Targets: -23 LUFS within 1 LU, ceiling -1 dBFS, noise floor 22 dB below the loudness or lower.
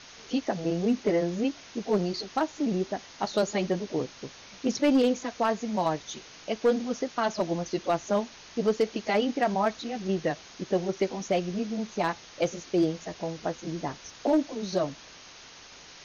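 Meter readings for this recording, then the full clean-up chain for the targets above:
clipped 0.4%; flat tops at -16.5 dBFS; noise floor -49 dBFS; noise floor target -51 dBFS; loudness -29.0 LUFS; peak -16.5 dBFS; loudness target -23.0 LUFS
-> clip repair -16.5 dBFS; noise print and reduce 6 dB; gain +6 dB

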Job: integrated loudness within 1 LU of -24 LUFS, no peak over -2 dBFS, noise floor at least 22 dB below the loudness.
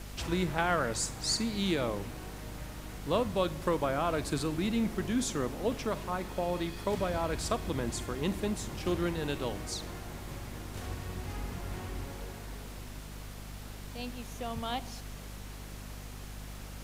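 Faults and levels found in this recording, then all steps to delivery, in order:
hum 50 Hz; harmonics up to 250 Hz; hum level -43 dBFS; noise floor -44 dBFS; noise floor target -56 dBFS; loudness -34.0 LUFS; peak -14.0 dBFS; loudness target -24.0 LUFS
-> notches 50/100/150/200/250 Hz; noise print and reduce 12 dB; gain +10 dB

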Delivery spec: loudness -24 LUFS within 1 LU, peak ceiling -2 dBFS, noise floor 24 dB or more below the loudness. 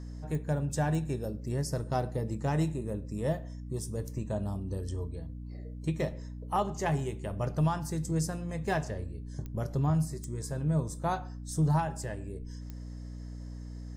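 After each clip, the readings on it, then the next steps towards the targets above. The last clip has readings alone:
clicks 5; hum 60 Hz; harmonics up to 300 Hz; hum level -39 dBFS; loudness -33.0 LUFS; peak -17.5 dBFS; loudness target -24.0 LUFS
-> de-click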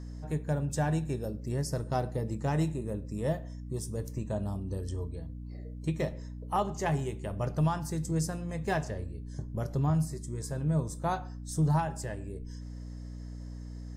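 clicks 0; hum 60 Hz; harmonics up to 300 Hz; hum level -39 dBFS
-> notches 60/120/180/240/300 Hz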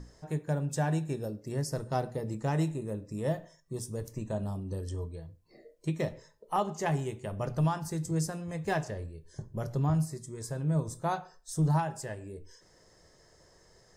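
hum none; loudness -33.5 LUFS; peak -18.0 dBFS; loudness target -24.0 LUFS
-> gain +9.5 dB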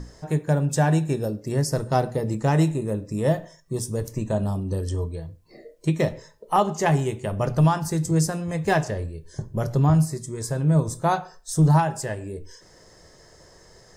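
loudness -24.0 LUFS; peak -8.5 dBFS; noise floor -53 dBFS

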